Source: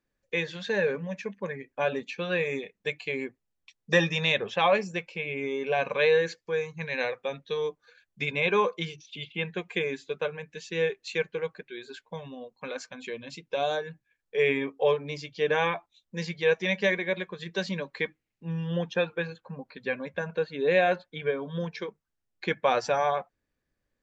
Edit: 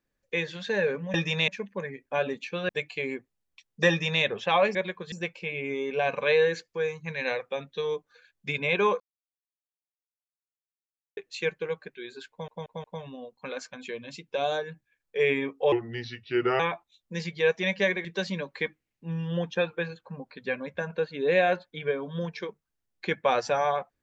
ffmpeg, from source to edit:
-filter_complex "[0:a]asplit=14[s0][s1][s2][s3][s4][s5][s6][s7][s8][s9][s10][s11][s12][s13];[s0]atrim=end=1.142[s14];[s1]atrim=start=3.988:end=4.332[s15];[s2]atrim=start=1.138:end=2.352[s16];[s3]atrim=start=2.788:end=4.852[s17];[s4]atrim=start=17.068:end=17.442[s18];[s5]atrim=start=4.848:end=8.73,asetpts=PTS-STARTPTS,afade=t=out:st=3.878:d=0.004:c=hsin[s19];[s6]atrim=start=8.73:end=10.9,asetpts=PTS-STARTPTS,volume=0[s20];[s7]atrim=start=10.9:end=12.212,asetpts=PTS-STARTPTS,afade=t=in:d=0.004:c=hsin[s21];[s8]atrim=start=12.028:end=12.212[s22];[s9]atrim=start=12.028:end=12.212[s23];[s10]atrim=start=12.028:end=14.914[s24];[s11]atrim=start=14.91:end=15.62,asetpts=PTS-STARTPTS,asetrate=35721,aresample=44100[s25];[s12]atrim=start=15.616:end=17.072[s26];[s13]atrim=start=17.438[s27];[s14][s15]acrossfade=d=0.004:c1=hsin:c2=hsin[s28];[s28][s16]acrossfade=d=0.004:c1=hsin:c2=hsin[s29];[s29][s17]acrossfade=d=0.004:c1=hsin:c2=hsin[s30];[s30][s18]acrossfade=d=0.004:c1=hsin:c2=hsin[s31];[s19][s20][s21]concat=n=3:v=0:a=1[s32];[s31][s32]acrossfade=d=0.004:c1=hsin:c2=hsin[s33];[s33][s22]acrossfade=d=0.004:c1=hsin:c2=hsin[s34];[s34][s23]acrossfade=d=0.004:c1=hsin:c2=hsin[s35];[s35][s24]acrossfade=d=0.004:c1=hsin:c2=hsin[s36];[s36][s25]acrossfade=d=0.004:c1=hsin:c2=hsin[s37];[s37][s26]acrossfade=d=0.004:c1=hsin:c2=hsin[s38];[s38][s27]acrossfade=d=0.004:c1=hsin:c2=hsin"

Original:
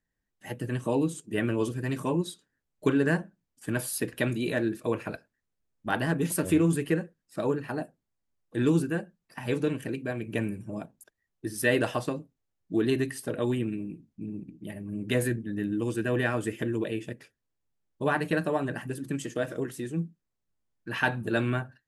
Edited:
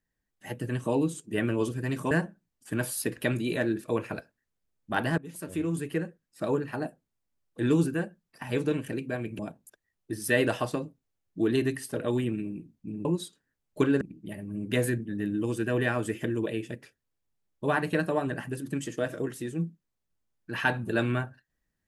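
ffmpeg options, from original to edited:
-filter_complex "[0:a]asplit=6[s0][s1][s2][s3][s4][s5];[s0]atrim=end=2.112[s6];[s1]atrim=start=3.068:end=6.14,asetpts=PTS-STARTPTS,afade=t=out:st=3.068:d=0.004:c=hsin:silence=0.112202[s7];[s2]atrim=start=6.14:end=10.352,asetpts=PTS-STARTPTS,afade=t=in:d=1.25:silence=0.112202[s8];[s3]atrim=start=10.728:end=14.392[s9];[s4]atrim=start=2.108:end=3.072[s10];[s5]atrim=start=14.388[s11];[s7][s8]concat=n=2:v=0:a=1[s12];[s6][s12]acrossfade=d=0.004:c1=hsin:c2=hsin[s13];[s13][s9]acrossfade=d=0.004:c1=hsin:c2=hsin[s14];[s14][s10]acrossfade=d=0.004:c1=hsin:c2=hsin[s15];[s15][s11]acrossfade=d=0.004:c1=hsin:c2=hsin"

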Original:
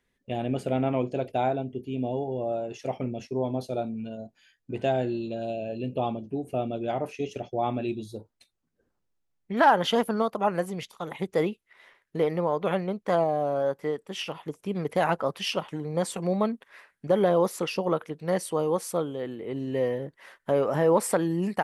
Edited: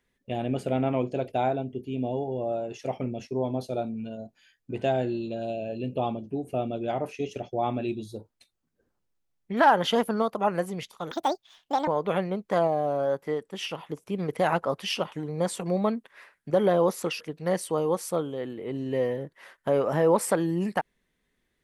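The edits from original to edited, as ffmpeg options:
-filter_complex "[0:a]asplit=4[s0][s1][s2][s3];[s0]atrim=end=11.114[s4];[s1]atrim=start=11.11:end=12.44,asetpts=PTS-STARTPTS,asetrate=76734,aresample=44100[s5];[s2]atrim=start=12.436:end=17.772[s6];[s3]atrim=start=18.018[s7];[s4][s5]acrossfade=d=0.004:c1=hsin:c2=hsin[s8];[s8][s6]acrossfade=d=0.004:c1=hsin:c2=hsin[s9];[s9][s7]acrossfade=d=0.004:c1=hsin:c2=hsin"

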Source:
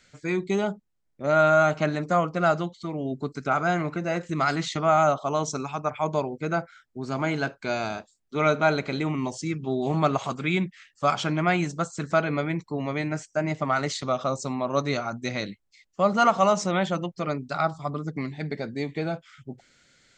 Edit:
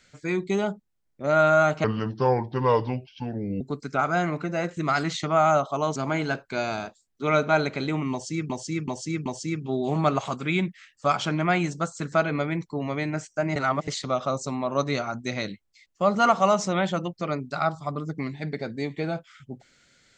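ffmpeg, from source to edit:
-filter_complex "[0:a]asplit=9[s0][s1][s2][s3][s4][s5][s6][s7][s8];[s0]atrim=end=1.844[s9];[s1]atrim=start=1.84:end=3.13,asetpts=PTS-STARTPTS,asetrate=32193,aresample=44100,atrim=end_sample=77930,asetpts=PTS-STARTPTS[s10];[s2]atrim=start=3.126:end=5.482[s11];[s3]atrim=start=7.078:end=9.622[s12];[s4]atrim=start=9.238:end=9.622[s13];[s5]atrim=start=9.238:end=9.622[s14];[s6]atrim=start=9.238:end=13.542[s15];[s7]atrim=start=13.538:end=13.862,asetpts=PTS-STARTPTS,areverse[s16];[s8]atrim=start=13.858[s17];[s9][s10]acrossfade=d=0.004:c1=hsin:c2=hsin[s18];[s18][s11]acrossfade=d=0.004:c1=hsin:c2=hsin[s19];[s19][s12]acrossfade=d=0.004:c1=hsin:c2=hsin[s20];[s20][s13]acrossfade=d=0.004:c1=hsin:c2=hsin[s21];[s21][s14]acrossfade=d=0.004:c1=hsin:c2=hsin[s22];[s22][s15]acrossfade=d=0.004:c1=hsin:c2=hsin[s23];[s23][s16]acrossfade=d=0.004:c1=hsin:c2=hsin[s24];[s24][s17]acrossfade=d=0.004:c1=hsin:c2=hsin"

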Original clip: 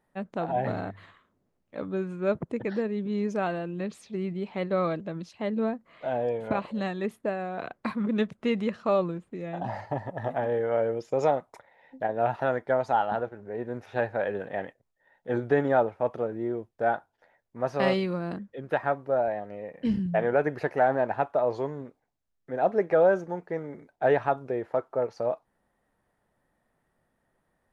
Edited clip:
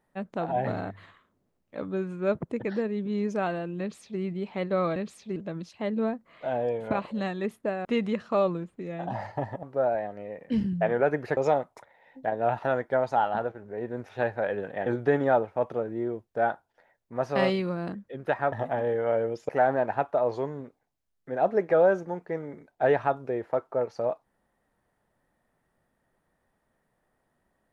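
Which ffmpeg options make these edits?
-filter_complex "[0:a]asplit=9[s0][s1][s2][s3][s4][s5][s6][s7][s8];[s0]atrim=end=4.962[s9];[s1]atrim=start=3.798:end=4.202[s10];[s2]atrim=start=4.958:end=7.452[s11];[s3]atrim=start=8.388:end=10.172[s12];[s4]atrim=start=18.958:end=20.702[s13];[s5]atrim=start=11.138:end=14.632[s14];[s6]atrim=start=15.298:end=18.962[s15];[s7]atrim=start=10.168:end=11.142[s16];[s8]atrim=start=20.698[s17];[s9][s10]acrossfade=d=0.004:c1=hsin:c2=hsin[s18];[s18][s11]acrossfade=d=0.004:c1=hsin:c2=hsin[s19];[s19][s12]acrossfade=d=0.004:c1=hsin:c2=hsin[s20];[s20][s13]acrossfade=d=0.004:c1=hsin:c2=hsin[s21];[s21][s14]acrossfade=d=0.004:c1=hsin:c2=hsin[s22];[s22][s15]acrossfade=d=0.004:c1=hsin:c2=hsin[s23];[s23][s16]acrossfade=d=0.004:c1=hsin:c2=hsin[s24];[s24][s17]acrossfade=d=0.004:c1=hsin:c2=hsin"

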